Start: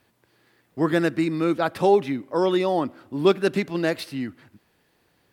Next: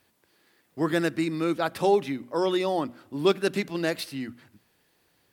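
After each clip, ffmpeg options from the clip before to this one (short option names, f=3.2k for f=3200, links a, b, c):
-af "highshelf=f=3.4k:g=7,bandreject=f=60:t=h:w=6,bandreject=f=120:t=h:w=6,bandreject=f=180:t=h:w=6,bandreject=f=240:t=h:w=6,volume=-4dB"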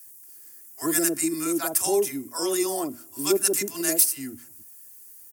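-filter_complex "[0:a]aexciter=amount=14.2:drive=7.2:freq=5.9k,aecho=1:1:2.9:0.55,acrossover=split=760[a][b];[a]adelay=50[c];[c][b]amix=inputs=2:normalize=0,volume=-3dB"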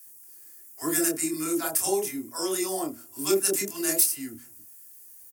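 -filter_complex "[0:a]asplit=2[a][b];[b]adelay=26,volume=-5dB[c];[a][c]amix=inputs=2:normalize=0,volume=-3dB"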